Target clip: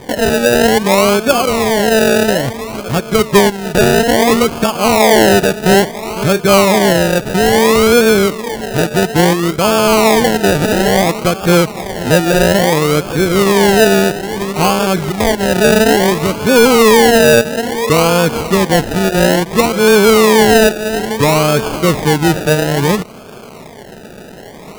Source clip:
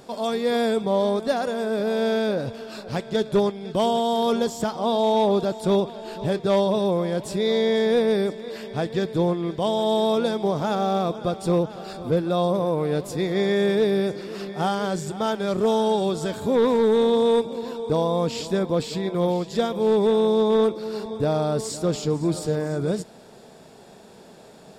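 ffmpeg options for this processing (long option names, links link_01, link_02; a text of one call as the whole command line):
ffmpeg -i in.wav -filter_complex "[0:a]asplit=2[link_01][link_02];[link_02]alimiter=limit=-22.5dB:level=0:latency=1:release=399,volume=-2dB[link_03];[link_01][link_03]amix=inputs=2:normalize=0,acrusher=samples=32:mix=1:aa=0.000001:lfo=1:lforange=19.2:lforate=0.59,volume=9dB" out.wav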